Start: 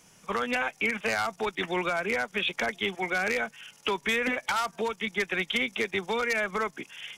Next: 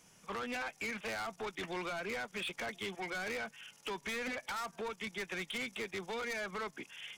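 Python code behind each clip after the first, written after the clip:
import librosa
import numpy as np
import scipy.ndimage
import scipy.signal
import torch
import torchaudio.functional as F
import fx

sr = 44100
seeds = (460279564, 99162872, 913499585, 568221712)

y = 10.0 ** (-30.0 / 20.0) * np.tanh(x / 10.0 ** (-30.0 / 20.0))
y = F.gain(torch.from_numpy(y), -5.5).numpy()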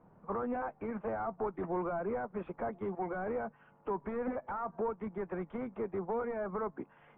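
y = scipy.signal.sosfilt(scipy.signal.butter(4, 1100.0, 'lowpass', fs=sr, output='sos'), x)
y = F.gain(torch.from_numpy(y), 6.5).numpy()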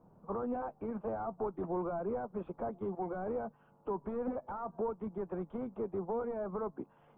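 y = fx.peak_eq(x, sr, hz=2000.0, db=-14.5, octaves=0.94)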